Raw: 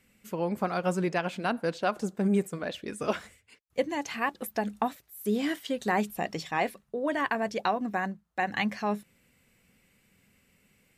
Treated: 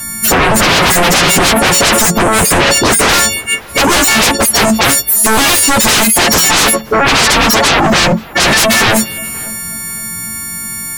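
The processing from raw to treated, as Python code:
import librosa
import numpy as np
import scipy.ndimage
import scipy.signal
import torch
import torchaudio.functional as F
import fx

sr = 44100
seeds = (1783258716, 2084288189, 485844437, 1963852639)

p1 = fx.freq_snap(x, sr, grid_st=4)
p2 = fx.peak_eq(p1, sr, hz=9500.0, db=-14.5, octaves=0.51, at=(6.67, 8.43))
p3 = fx.over_compress(p2, sr, threshold_db=-36.0, ratio=-1.0)
p4 = p2 + F.gain(torch.from_numpy(p3), 1.5).numpy()
p5 = fx.env_phaser(p4, sr, low_hz=420.0, high_hz=4700.0, full_db=-21.0)
p6 = fx.fold_sine(p5, sr, drive_db=17, ceiling_db=-12.5)
p7 = p6 + fx.echo_filtered(p6, sr, ms=532, feedback_pct=33, hz=2200.0, wet_db=-21.0, dry=0)
y = F.gain(torch.from_numpy(p7), 6.5).numpy()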